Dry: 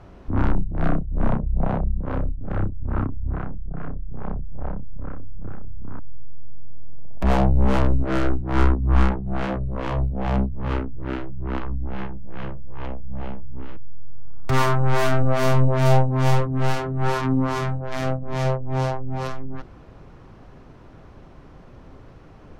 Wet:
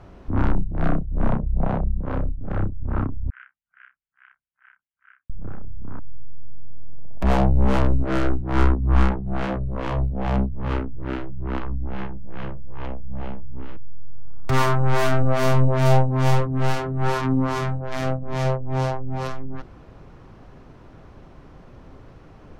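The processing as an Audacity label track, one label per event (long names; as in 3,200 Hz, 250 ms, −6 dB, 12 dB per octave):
3.300000	5.300000	elliptic band-pass filter 1,500–3,100 Hz, stop band 60 dB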